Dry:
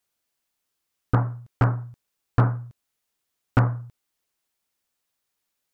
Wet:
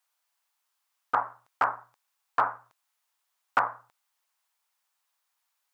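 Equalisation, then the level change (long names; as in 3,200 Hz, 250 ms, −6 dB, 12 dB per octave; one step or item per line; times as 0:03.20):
high-pass with resonance 920 Hz, resonance Q 2
0.0 dB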